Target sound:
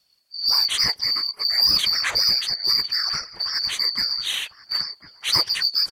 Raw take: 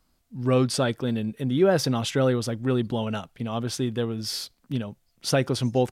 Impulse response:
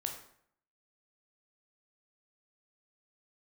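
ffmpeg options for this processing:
-filter_complex "[0:a]afftfilt=real='real(if(lt(b,272),68*(eq(floor(b/68),0)*1+eq(floor(b/68),1)*2+eq(floor(b/68),2)*3+eq(floor(b/68),3)*0)+mod(b,68),b),0)':imag='imag(if(lt(b,272),68*(eq(floor(b/68),0)*1+eq(floor(b/68),1)*2+eq(floor(b/68),2)*3+eq(floor(b/68),3)*0)+mod(b,68),b),0)':win_size=2048:overlap=0.75,acrossover=split=690|3200[s0][s1][s2];[s1]dynaudnorm=f=140:g=7:m=2.51[s3];[s0][s3][s2]amix=inputs=3:normalize=0,asplit=2[s4][s5];[s5]adelay=1050,volume=0.224,highshelf=f=4000:g=-23.6[s6];[s4][s6]amix=inputs=2:normalize=0,asoftclip=type=tanh:threshold=0.188,afftfilt=real='hypot(re,im)*cos(2*PI*random(0))':imag='hypot(re,im)*sin(2*PI*random(1))':win_size=512:overlap=0.75,volume=2.51"

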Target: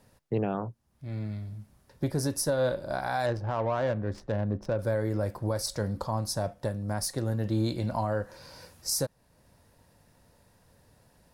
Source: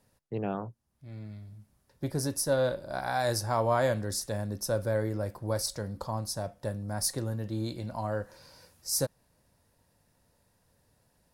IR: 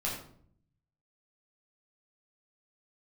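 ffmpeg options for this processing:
-filter_complex "[0:a]highshelf=f=5100:g=-4.5,alimiter=level_in=1.26:limit=0.0631:level=0:latency=1:release=475,volume=0.794,asettb=1/sr,asplit=3[s0][s1][s2];[s0]atrim=end=3.264[s3];[s1]atrim=start=3.26:end=4.79,asetpts=PTS-STARTPTS,afade=t=in:d=0.004:c=qsin,afade=t=out:st=1.526:d=0.004:c=qsin,adynamicsmooth=sensitivity=6:basefreq=1000[s4];[s2]atrim=start=4.786[s5];[s3][s4]acrossfade=d=0.004:c1=hsin:c2=qsin[s6];[s6][s5]acrossfade=d=0.004:c1=qsin:c2=hsin,asettb=1/sr,asplit=3[s7][s8][s9];[s7]atrim=end=6.534[s10];[s8]atrim=start=6.53:end=7.45,asetpts=PTS-STARTPTS,afade=t=in:d=0.004:c=qsin,afade=t=out:st=0.916:d=0.004:c=qsin,aeval=exprs='0.0501*(cos(1*acos(clip(val(0)/0.0501,-1,1)))-cos(1*PI/2))+0.00316*(cos(3*acos(clip(val(0)/0.0501,-1,1)))-cos(3*PI/2))':c=same[s11];[s9]atrim=start=7.446[s12];[s10][s11]acrossfade=d=0.004:c1=hsin:c2=qsin[s13];[s13][s12]acrossfade=d=0.004:c1=qsin:c2=hsin,volume=2.51"

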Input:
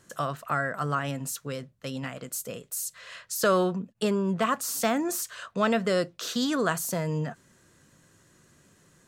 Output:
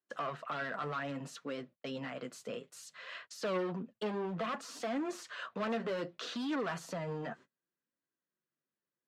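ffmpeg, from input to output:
-filter_complex "[0:a]lowpass=8000,asoftclip=type=hard:threshold=0.0473,agate=range=0.0251:threshold=0.00355:ratio=16:detection=peak,flanger=delay=2.5:depth=7:regen=-32:speed=0.62:shape=triangular,alimiter=level_in=2.51:limit=0.0631:level=0:latency=1:release=16,volume=0.398,acrossover=split=170 4300:gain=0.0631 1 0.141[s0][s1][s2];[s0][s1][s2]amix=inputs=3:normalize=0,volume=1.33" -ar 44100 -c:a aac -b:a 96k

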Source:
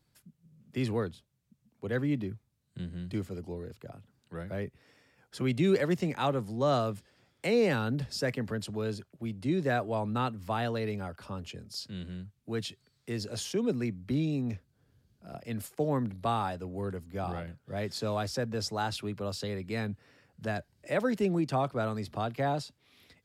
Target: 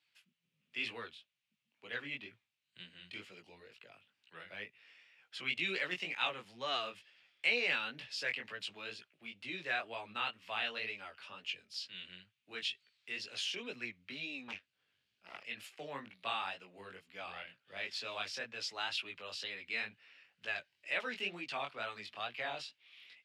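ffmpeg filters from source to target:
-filter_complex "[0:a]flanger=delay=16:depth=6.1:speed=2.1,asettb=1/sr,asplit=3[s0][s1][s2];[s0]atrim=end=14.484[s3];[s1]atrim=start=14.48:end=15.44,asetpts=PTS-STARTPTS,afade=t=in:d=0.004:c=qsin,afade=t=out:st=0.956:d=0.004:c=qsin,aeval=exprs='0.0376*(cos(1*acos(clip(val(0)/0.0376,-1,1)))-cos(1*PI/2))+0.0119*(cos(6*acos(clip(val(0)/0.0376,-1,1)))-cos(6*PI/2))':c=same[s4];[s2]atrim=start=15.436[s5];[s3][s4]acrossfade=d=0.004:c1=hsin:c2=qsin[s6];[s6][s5]acrossfade=d=0.004:c1=qsin:c2=hsin,bandpass=f=2700:t=q:w=3.1:csg=0,volume=3.98"

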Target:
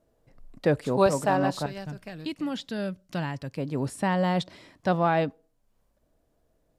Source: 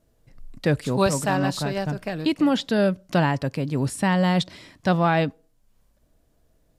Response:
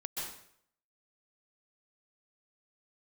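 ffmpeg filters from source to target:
-af "asetnsamples=n=441:p=0,asendcmd='1.66 equalizer g -4.5;3.58 equalizer g 6.5',equalizer=f=610:t=o:w=2.7:g=9.5,volume=0.398"

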